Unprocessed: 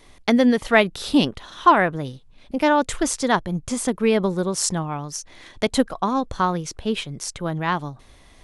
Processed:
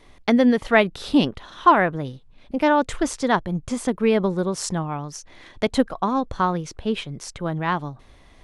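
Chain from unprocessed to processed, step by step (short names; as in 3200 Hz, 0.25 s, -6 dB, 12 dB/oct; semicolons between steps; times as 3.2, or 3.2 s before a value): high shelf 5100 Hz -10 dB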